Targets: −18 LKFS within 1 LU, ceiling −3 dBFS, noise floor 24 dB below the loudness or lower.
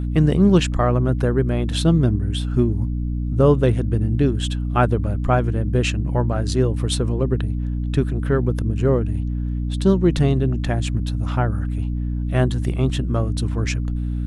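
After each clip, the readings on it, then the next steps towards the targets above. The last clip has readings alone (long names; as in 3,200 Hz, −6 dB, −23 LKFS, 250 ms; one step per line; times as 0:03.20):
mains hum 60 Hz; hum harmonics up to 300 Hz; level of the hum −21 dBFS; integrated loudness −20.5 LKFS; sample peak −3.5 dBFS; target loudness −18.0 LKFS
→ hum removal 60 Hz, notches 5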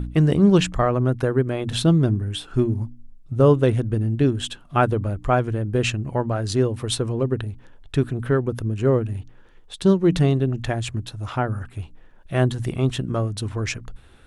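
mains hum none found; integrated loudness −22.0 LKFS; sample peak −5.0 dBFS; target loudness −18.0 LKFS
→ level +4 dB
brickwall limiter −3 dBFS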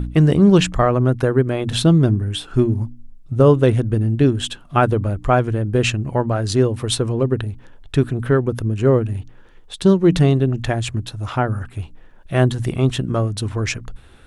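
integrated loudness −18.5 LKFS; sample peak −3.0 dBFS; background noise floor −44 dBFS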